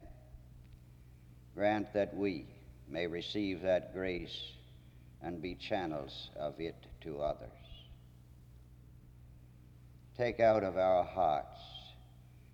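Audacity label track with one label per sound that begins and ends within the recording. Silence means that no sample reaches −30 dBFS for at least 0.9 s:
1.600000	4.180000	sound
5.280000	7.310000	sound
10.200000	11.400000	sound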